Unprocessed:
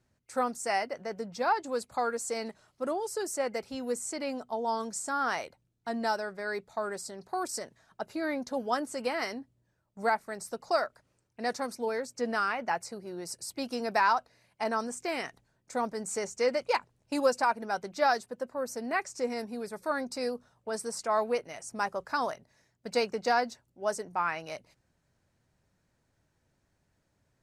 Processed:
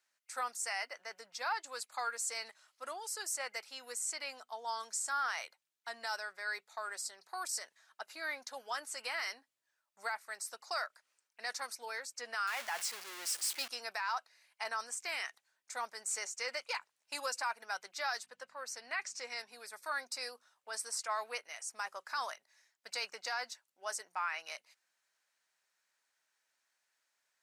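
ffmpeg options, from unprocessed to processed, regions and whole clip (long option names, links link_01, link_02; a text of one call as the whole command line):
ffmpeg -i in.wav -filter_complex "[0:a]asettb=1/sr,asplit=3[link_01][link_02][link_03];[link_01]atrim=end=12.474[link_04];[link_02]atrim=start=12.47:end=13.68,asetpts=PTS-STARTPTS,afade=type=in:duration=0.004:curve=qsin,afade=type=out:start_time=1.206:duration=0.004:curve=qsin,aeval=exprs='val(0)+0.5*0.0251*sgn(val(0))':channel_layout=same,agate=range=-33dB:threshold=-33dB:ratio=3:release=100:detection=peak[link_05];[link_03]atrim=start=13.676[link_06];[link_04][link_05]acrossfade=duration=0.004:curve1=hsin:curve2=qsin[link_07];[link_07][link_06]acrossfade=duration=0.004:curve1=qsin:curve2=hsin,asettb=1/sr,asplit=3[link_08][link_09][link_10];[link_08]atrim=end=18.234[link_11];[link_09]atrim=start=18.23:end=19.52,asetpts=PTS-STARTPTS,afade=type=in:duration=0.004:curve=qsin,afade=type=out:start_time=1.286:duration=0.004:curve=qsin,aemphasis=mode=production:type=75fm,aeval=exprs='val(0)+0.00708*(sin(2*PI*50*n/s)+sin(2*PI*2*50*n/s)/2+sin(2*PI*3*50*n/s)/3+sin(2*PI*4*50*n/s)/4+sin(2*PI*5*50*n/s)/5)':channel_layout=same,highpass=130,lowpass=3700[link_12];[link_10]atrim=start=19.516[link_13];[link_11][link_12]acrossfade=duration=0.004:curve1=hsin:curve2=qsin[link_14];[link_14][link_13]acrossfade=duration=0.004:curve1=qsin:curve2=hsin,highpass=1400,alimiter=level_in=3.5dB:limit=-24dB:level=0:latency=1:release=23,volume=-3.5dB,volume=1dB" out.wav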